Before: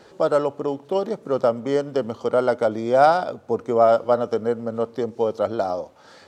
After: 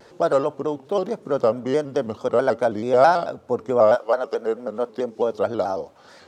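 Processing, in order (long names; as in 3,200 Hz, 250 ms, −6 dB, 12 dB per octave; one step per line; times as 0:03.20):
0:03.94–0:05.32: high-pass filter 590 Hz → 150 Hz 12 dB per octave
pitch modulation by a square or saw wave square 4.6 Hz, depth 100 cents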